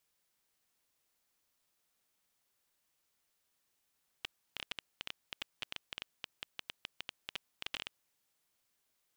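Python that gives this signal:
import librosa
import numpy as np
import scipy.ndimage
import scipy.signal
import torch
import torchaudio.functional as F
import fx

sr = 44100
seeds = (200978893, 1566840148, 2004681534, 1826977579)

y = fx.geiger_clicks(sr, seeds[0], length_s=3.71, per_s=11.0, level_db=-21.5)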